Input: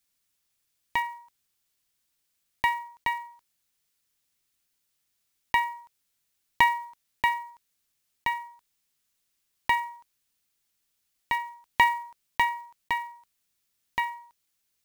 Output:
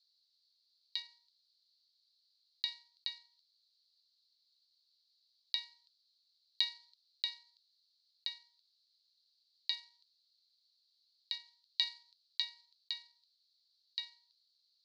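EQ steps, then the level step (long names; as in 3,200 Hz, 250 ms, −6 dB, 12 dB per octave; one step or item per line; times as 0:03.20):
flat-topped band-pass 4,300 Hz, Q 5.4
+14.5 dB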